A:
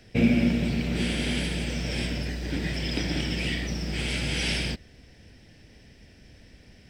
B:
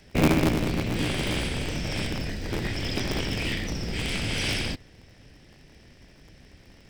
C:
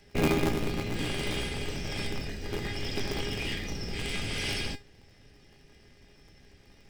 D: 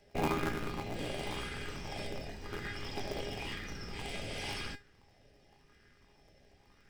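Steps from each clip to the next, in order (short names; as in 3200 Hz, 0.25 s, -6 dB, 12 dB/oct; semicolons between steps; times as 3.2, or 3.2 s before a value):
cycle switcher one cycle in 3, inverted
resonator 410 Hz, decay 0.22 s, harmonics all, mix 80%; gain +6.5 dB
LFO bell 0.94 Hz 580–1500 Hz +12 dB; gain -8.5 dB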